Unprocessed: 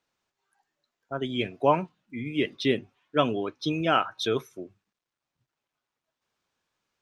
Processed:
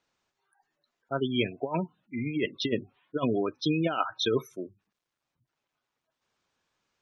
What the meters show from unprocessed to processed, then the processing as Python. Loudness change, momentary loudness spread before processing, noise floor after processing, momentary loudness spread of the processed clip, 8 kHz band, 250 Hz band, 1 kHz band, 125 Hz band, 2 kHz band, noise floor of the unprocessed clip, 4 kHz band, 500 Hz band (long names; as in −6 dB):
−2.5 dB, 14 LU, below −85 dBFS, 10 LU, 0.0 dB, 0.0 dB, −6.5 dB, 0.0 dB, −3.5 dB, below −85 dBFS, −1.5 dB, −3.0 dB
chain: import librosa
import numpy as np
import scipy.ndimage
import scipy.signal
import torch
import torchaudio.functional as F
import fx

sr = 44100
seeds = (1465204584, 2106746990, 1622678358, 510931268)

y = fx.over_compress(x, sr, threshold_db=-25.0, ratio=-0.5)
y = fx.spec_gate(y, sr, threshold_db=-20, keep='strong')